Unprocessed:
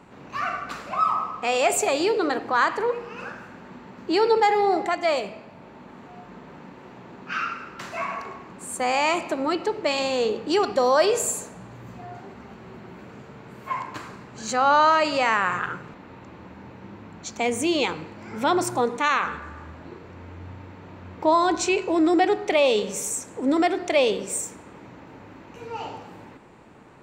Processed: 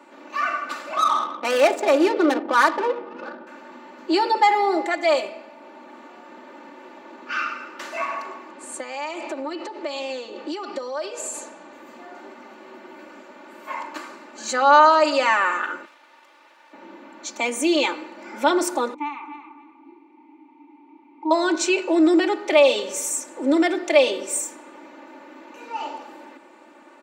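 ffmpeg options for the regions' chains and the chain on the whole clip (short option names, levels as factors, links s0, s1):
-filter_complex "[0:a]asettb=1/sr,asplit=3[s0][s1][s2];[s0]atrim=end=0.964[s3];[s1]atrim=start=0.96:end=3.47,asetpts=PTS-STARTPTS,afade=t=in:d=0.004:c=qsin,afade=t=out:st=2.506:d=0.004:c=qsin,lowshelf=f=420:g=7.5,adynamicsmooth=sensitivity=2:basefreq=610[s4];[s2]atrim=start=3.466[s5];[s3][s4]acrossfade=d=0.004:c1=hsin:c2=qsin[s6];[s6][s5]acrossfade=d=0.004:c1=qsin:c2=hsin,asettb=1/sr,asplit=3[s7][s8][s9];[s7]atrim=end=8.514[s10];[s8]atrim=start=8.51:end=11.73,asetpts=PTS-STARTPTS,afade=t=in:d=0.004:c=qsin,afade=t=out:st=3.216:d=0.004:c=qsin,lowpass=7100,acompressor=threshold=0.0398:ratio=16:attack=3.2:release=140:knee=1:detection=peak[s11];[s9]atrim=start=11.726[s12];[s10][s11]acrossfade=d=0.004:c1=hsin:c2=qsin[s13];[s13][s12]acrossfade=d=0.004:c1=qsin:c2=hsin,asettb=1/sr,asplit=3[s14][s15][s16];[s14]atrim=end=15.854[s17];[s15]atrim=start=15.85:end=16.73,asetpts=PTS-STARTPTS,afade=t=in:d=0.004:c=qsin,afade=t=out:st=0.876:d=0.004:c=qsin,highpass=870,aeval=exprs='max(val(0),0)':c=same[s18];[s16]atrim=start=16.726[s19];[s17][s18]acrossfade=d=0.004:c1=hsin:c2=qsin[s20];[s20][s19]acrossfade=d=0.004:c1=qsin:c2=hsin,asettb=1/sr,asplit=3[s21][s22][s23];[s21]atrim=end=18.944[s24];[s22]atrim=start=18.94:end=21.31,asetpts=PTS-STARTPTS,afade=t=in:d=0.004:c=qsin,afade=t=out:st=2.366:d=0.004:c=qsin,asplit=3[s25][s26][s27];[s25]bandpass=f=300:t=q:w=8,volume=1[s28];[s26]bandpass=f=870:t=q:w=8,volume=0.501[s29];[s27]bandpass=f=2240:t=q:w=8,volume=0.355[s30];[s28][s29][s30]amix=inputs=3:normalize=0,asplit=2[s31][s32];[s32]adelay=276,lowpass=f=4200:p=1,volume=0.316,asplit=2[s33][s34];[s34]adelay=276,lowpass=f=4200:p=1,volume=0.27,asplit=2[s35][s36];[s36]adelay=276,lowpass=f=4200:p=1,volume=0.27[s37];[s31][s33][s35][s37]amix=inputs=4:normalize=0,atrim=end_sample=104517[s38];[s23]atrim=start=21.306[s39];[s24][s38]acrossfade=d=0.004:c1=hsin:c2=qsin[s40];[s40][s39]acrossfade=d=0.004:c1=qsin:c2=hsin,highpass=f=290:w=0.5412,highpass=f=290:w=1.3066,aecho=1:1:3.4:0.92"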